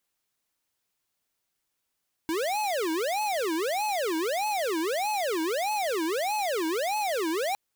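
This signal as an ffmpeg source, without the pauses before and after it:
-f lavfi -i "aevalsrc='0.0398*(2*lt(mod((586*t-270/(2*PI*1.6)*sin(2*PI*1.6*t)),1),0.5)-1)':d=5.26:s=44100"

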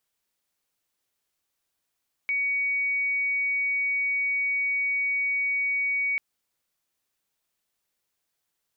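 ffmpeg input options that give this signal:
-f lavfi -i "aevalsrc='0.0708*sin(2*PI*2250*t)':d=3.89:s=44100"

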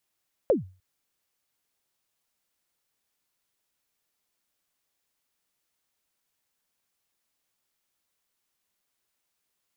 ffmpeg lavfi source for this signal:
-f lavfi -i "aevalsrc='0.2*pow(10,-3*t/0.35)*sin(2*PI*(600*0.14/log(93/600)*(exp(log(93/600)*min(t,0.14)/0.14)-1)+93*max(t-0.14,0)))':d=0.3:s=44100"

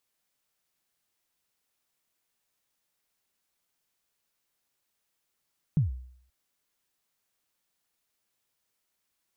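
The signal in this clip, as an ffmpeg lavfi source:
-f lavfi -i "aevalsrc='0.133*pow(10,-3*t/0.63)*sin(2*PI*(170*0.137/log(63/170)*(exp(log(63/170)*min(t,0.137)/0.137)-1)+63*max(t-0.137,0)))':d=0.53:s=44100"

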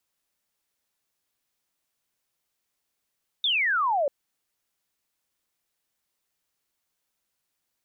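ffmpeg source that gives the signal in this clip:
-f lavfi -i "aevalsrc='0.0891*clip(t/0.002,0,1)*clip((0.64-t)/0.002,0,1)*sin(2*PI*3700*0.64/log(540/3700)*(exp(log(540/3700)*t/0.64)-1))':d=0.64:s=44100"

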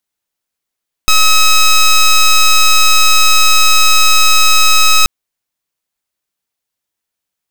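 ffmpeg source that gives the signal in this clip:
-f lavfi -i "aevalsrc='0.473*(2*lt(mod(1280*t,1),0.11)-1)':d=3.98:s=44100"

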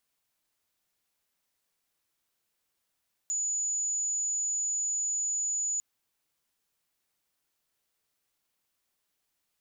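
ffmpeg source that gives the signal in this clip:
-f lavfi -i "sine=f=6920:d=2.5:r=44100,volume=-9.44dB"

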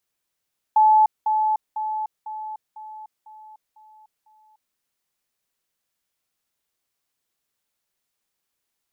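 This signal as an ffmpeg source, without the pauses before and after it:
-f lavfi -i "aevalsrc='pow(10,(-11.5-6*floor(t/0.5))/20)*sin(2*PI*863*t)*clip(min(mod(t,0.5),0.3-mod(t,0.5))/0.005,0,1)':d=4:s=44100"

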